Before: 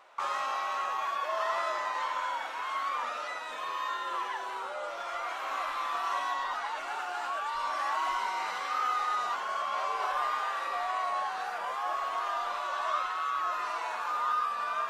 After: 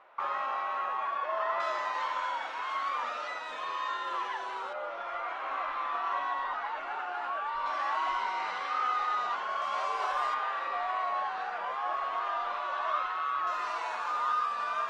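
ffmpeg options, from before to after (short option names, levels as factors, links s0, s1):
-af "asetnsamples=n=441:p=0,asendcmd='1.6 lowpass f 5600;4.73 lowpass f 2500;7.66 lowpass f 4100;9.62 lowpass f 8100;10.34 lowpass f 3300;13.47 lowpass f 7200',lowpass=2300"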